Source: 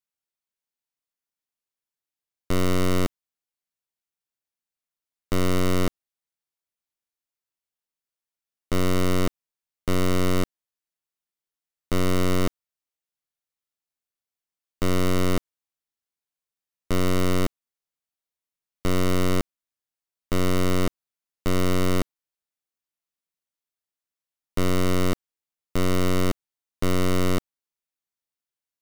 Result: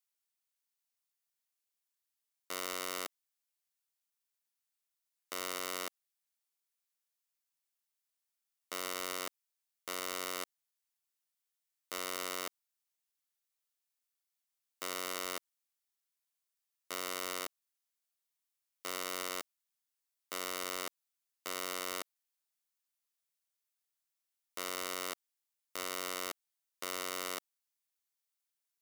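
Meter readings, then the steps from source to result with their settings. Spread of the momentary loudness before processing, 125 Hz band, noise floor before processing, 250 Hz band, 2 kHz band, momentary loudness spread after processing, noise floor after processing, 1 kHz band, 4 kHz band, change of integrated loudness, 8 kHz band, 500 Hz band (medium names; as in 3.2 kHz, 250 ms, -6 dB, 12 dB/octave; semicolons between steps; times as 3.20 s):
7 LU, -38.5 dB, under -85 dBFS, -26.5 dB, -9.0 dB, 7 LU, under -85 dBFS, -10.0 dB, -7.0 dB, -13.5 dB, -4.5 dB, -17.5 dB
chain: high-pass 700 Hz 12 dB/octave; treble shelf 4.2 kHz +7 dB; peak limiter -16.5 dBFS, peak gain reduction 8 dB; trim -2 dB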